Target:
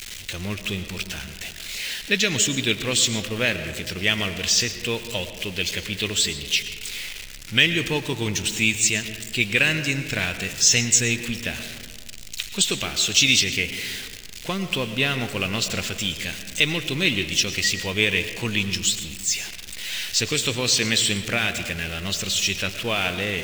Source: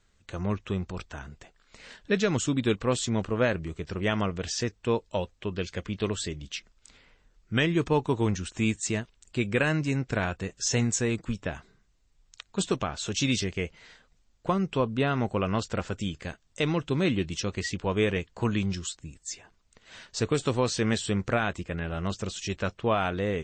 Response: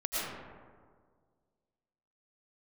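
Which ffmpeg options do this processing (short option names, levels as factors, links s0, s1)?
-filter_complex "[0:a]aeval=exprs='val(0)+0.5*0.0133*sgn(val(0))':c=same,highshelf=f=1700:t=q:w=1.5:g=12.5,asplit=2[s0][s1];[1:a]atrim=start_sample=2205[s2];[s1][s2]afir=irnorm=-1:irlink=0,volume=0.188[s3];[s0][s3]amix=inputs=2:normalize=0,volume=0.708"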